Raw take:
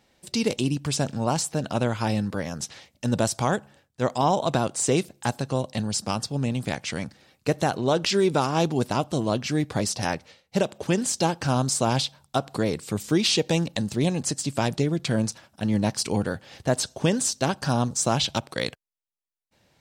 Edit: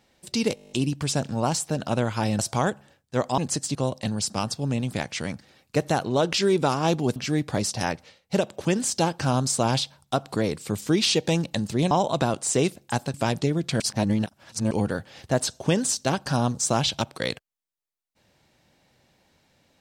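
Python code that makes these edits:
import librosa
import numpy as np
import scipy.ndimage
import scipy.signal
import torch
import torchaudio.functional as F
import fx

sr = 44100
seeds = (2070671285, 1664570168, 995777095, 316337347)

y = fx.edit(x, sr, fx.stutter(start_s=0.55, slice_s=0.02, count=9),
    fx.cut(start_s=2.23, length_s=1.02),
    fx.swap(start_s=4.24, length_s=1.23, other_s=14.13, other_length_s=0.37),
    fx.cut(start_s=8.88, length_s=0.5),
    fx.reverse_span(start_s=15.16, length_s=0.91), tone=tone)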